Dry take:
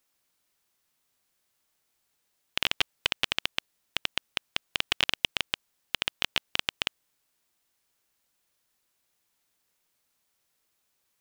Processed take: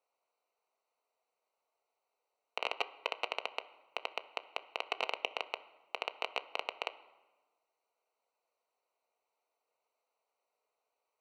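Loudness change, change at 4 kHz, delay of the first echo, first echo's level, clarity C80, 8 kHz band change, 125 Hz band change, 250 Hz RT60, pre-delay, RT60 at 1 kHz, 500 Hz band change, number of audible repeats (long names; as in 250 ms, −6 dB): −9.5 dB, −13.0 dB, no echo audible, no echo audible, 18.0 dB, −17.5 dB, below −30 dB, 1.6 s, 4 ms, 1.2 s, +2.5 dB, no echo audible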